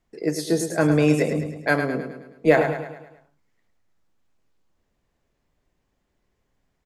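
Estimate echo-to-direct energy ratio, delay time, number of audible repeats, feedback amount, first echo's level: -7.0 dB, 106 ms, 5, 49%, -8.0 dB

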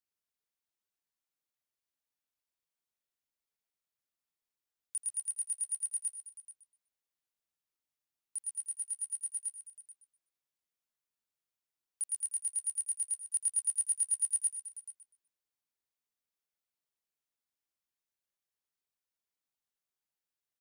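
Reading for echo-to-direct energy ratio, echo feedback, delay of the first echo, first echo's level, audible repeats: -8.5 dB, no regular repeats, 84 ms, -17.5 dB, 6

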